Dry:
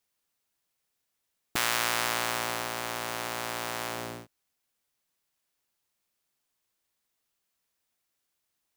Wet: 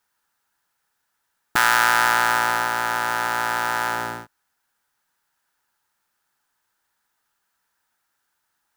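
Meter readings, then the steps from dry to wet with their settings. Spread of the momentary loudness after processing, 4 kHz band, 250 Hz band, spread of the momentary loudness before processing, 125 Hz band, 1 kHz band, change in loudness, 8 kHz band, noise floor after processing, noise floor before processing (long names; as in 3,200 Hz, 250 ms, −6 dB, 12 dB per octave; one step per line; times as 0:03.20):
9 LU, +4.5 dB, +4.5 dB, 9 LU, +4.5 dB, +13.5 dB, +10.0 dB, +4.5 dB, −75 dBFS, −81 dBFS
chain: flat-topped bell 1,200 Hz +12 dB 1.3 octaves
notch filter 1,100 Hz, Q 6.2
level +4.5 dB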